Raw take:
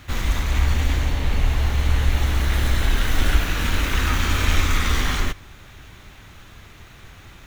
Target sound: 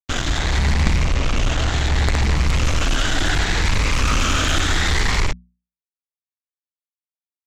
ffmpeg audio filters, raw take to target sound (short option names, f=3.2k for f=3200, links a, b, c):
-af "afftfilt=real='re*pow(10,9/40*sin(2*PI*(0.87*log(max(b,1)*sr/1024/100)/log(2)-(0.69)*(pts-256)/sr)))':imag='im*pow(10,9/40*sin(2*PI*(0.87*log(max(b,1)*sr/1024/100)/log(2)-(0.69)*(pts-256)/sr)))':win_size=1024:overlap=0.75,aresample=16000,acrusher=bits=3:mix=0:aa=0.5,aresample=44100,aeval=exprs='0.596*(cos(1*acos(clip(val(0)/0.596,-1,1)))-cos(1*PI/2))+0.211*(cos(3*acos(clip(val(0)/0.596,-1,1)))-cos(3*PI/2))+0.237*(cos(5*acos(clip(val(0)/0.596,-1,1)))-cos(5*PI/2))':c=same,bandreject=f=60:t=h:w=6,bandreject=f=120:t=h:w=6,bandreject=f=180:t=h:w=6,bandreject=f=240:t=h:w=6,volume=-1dB"